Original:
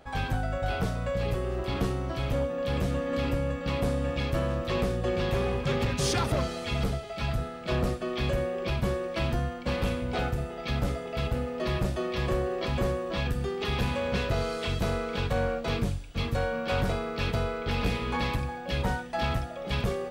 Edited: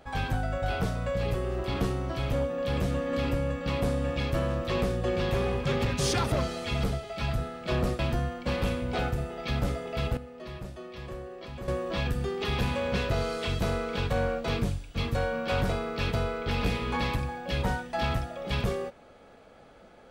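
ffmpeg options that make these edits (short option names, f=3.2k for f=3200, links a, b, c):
-filter_complex "[0:a]asplit=4[a][b][c][d];[a]atrim=end=7.992[e];[b]atrim=start=9.188:end=11.372[f];[c]atrim=start=11.368:end=12.882,asetpts=PTS-STARTPTS,volume=-11.5dB[g];[d]atrim=start=12.878[h];[e][f]acrossfade=d=0.004:c1=hsin:c2=hsin[i];[i][g]acrossfade=d=0.004:c1=hsin:c2=hsin[j];[j][h]acrossfade=d=0.004:c1=hsin:c2=hsin"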